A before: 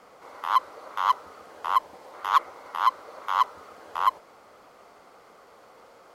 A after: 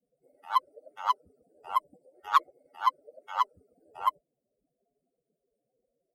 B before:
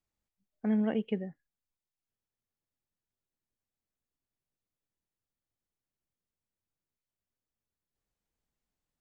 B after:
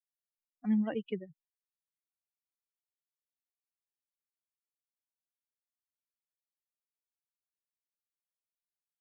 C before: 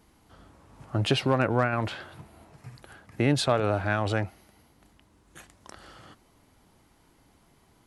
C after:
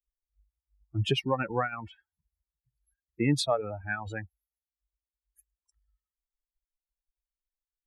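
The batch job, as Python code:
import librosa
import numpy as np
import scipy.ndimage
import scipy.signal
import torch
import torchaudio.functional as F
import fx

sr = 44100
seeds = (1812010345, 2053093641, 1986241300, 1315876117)

y = fx.bin_expand(x, sr, power=3.0)
y = F.gain(torch.from_numpy(y), 1.5).numpy()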